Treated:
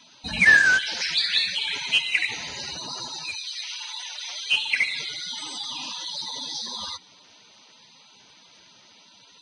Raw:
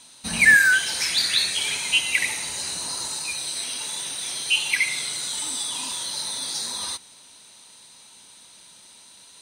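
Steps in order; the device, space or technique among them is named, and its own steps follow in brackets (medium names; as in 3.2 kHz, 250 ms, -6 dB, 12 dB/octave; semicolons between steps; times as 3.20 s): clip after many re-uploads (low-pass 5.6 kHz 24 dB/octave; coarse spectral quantiser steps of 30 dB); 3.35–4.51 s: high-pass 1.4 kHz -> 470 Hz 24 dB/octave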